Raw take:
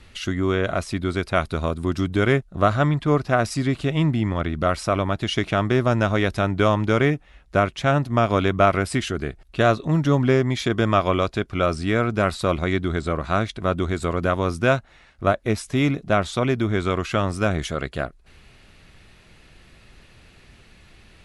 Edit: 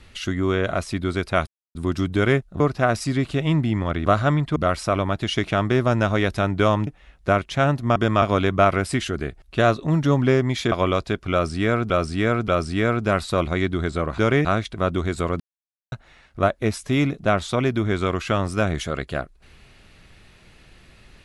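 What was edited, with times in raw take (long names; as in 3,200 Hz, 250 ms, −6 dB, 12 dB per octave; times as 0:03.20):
0:01.47–0:01.75: silence
0:02.60–0:03.10: move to 0:04.56
0:06.87–0:07.14: move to 0:13.29
0:10.73–0:10.99: move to 0:08.23
0:11.59–0:12.17: repeat, 3 plays
0:14.24–0:14.76: silence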